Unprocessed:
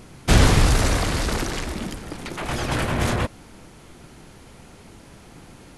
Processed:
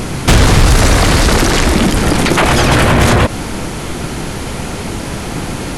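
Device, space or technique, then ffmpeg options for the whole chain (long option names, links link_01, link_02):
loud club master: -af "acompressor=threshold=-21dB:ratio=2.5,asoftclip=type=hard:threshold=-17dB,alimiter=level_in=25.5dB:limit=-1dB:release=50:level=0:latency=1,volume=-1dB"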